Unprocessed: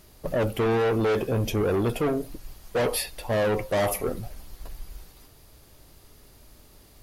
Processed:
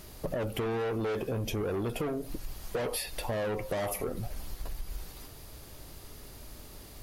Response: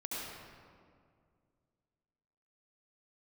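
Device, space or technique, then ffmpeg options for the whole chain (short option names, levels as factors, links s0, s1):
serial compression, peaks first: -af "acompressor=threshold=0.0282:ratio=6,acompressor=threshold=0.0112:ratio=2,volume=1.78"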